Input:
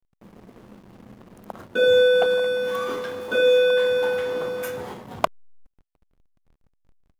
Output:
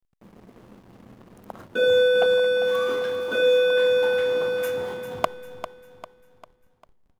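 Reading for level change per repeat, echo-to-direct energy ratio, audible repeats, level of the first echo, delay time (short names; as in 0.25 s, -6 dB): -7.0 dB, -10.0 dB, 4, -11.0 dB, 0.398 s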